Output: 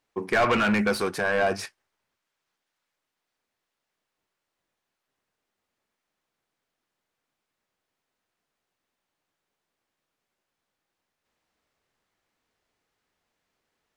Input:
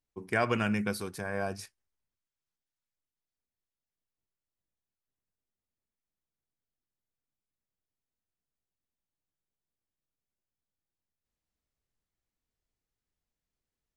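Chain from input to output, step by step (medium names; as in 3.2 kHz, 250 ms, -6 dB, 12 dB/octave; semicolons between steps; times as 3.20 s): overdrive pedal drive 25 dB, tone 1.8 kHz, clips at -13 dBFS; trim +1 dB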